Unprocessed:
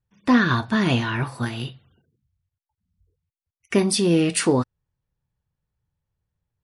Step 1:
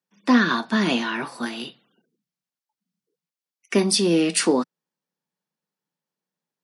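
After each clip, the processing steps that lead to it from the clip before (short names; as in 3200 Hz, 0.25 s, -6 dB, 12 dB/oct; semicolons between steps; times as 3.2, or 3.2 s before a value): steep high-pass 180 Hz 48 dB/oct; bell 5100 Hz +4.5 dB 0.85 oct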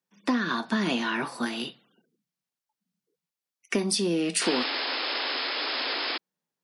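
compressor 6:1, threshold -23 dBFS, peak gain reduction 11 dB; painted sound noise, 4.41–6.18, 240–5300 Hz -30 dBFS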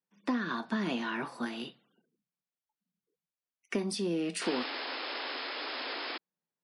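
high shelf 3600 Hz -8 dB; gain -5.5 dB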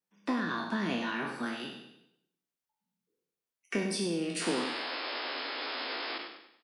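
spectral trails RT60 0.65 s; feedback echo 99 ms, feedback 42%, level -10 dB; gain -1.5 dB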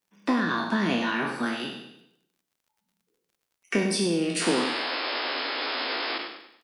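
crackle 49/s -62 dBFS; gain +7 dB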